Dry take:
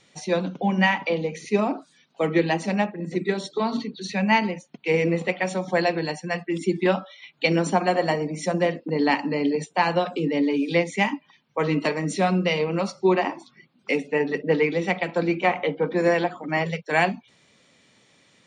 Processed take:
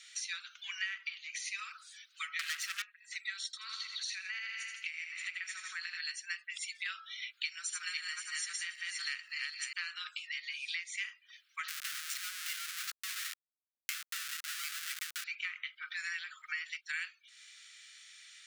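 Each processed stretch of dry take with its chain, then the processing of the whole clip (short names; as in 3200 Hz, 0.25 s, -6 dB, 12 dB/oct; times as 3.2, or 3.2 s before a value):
2.39–2.82 high shelf 4800 Hz -10 dB + sample leveller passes 5
3.45–6 feedback echo 81 ms, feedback 50%, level -7 dB + compressor 12:1, threshold -28 dBFS + resonant high-pass 750 Hz, resonance Q 1.6
7.45–9.73 regenerating reverse delay 0.262 s, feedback 42%, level -3 dB + high shelf 7000 Hz +11.5 dB
11.68–15.24 resonant low shelf 130 Hz +12 dB, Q 1.5 + Schmitt trigger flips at -32 dBFS
whole clip: steep high-pass 1300 Hz 72 dB/oct; high shelf 2300 Hz +8.5 dB; compressor 5:1, threshold -38 dBFS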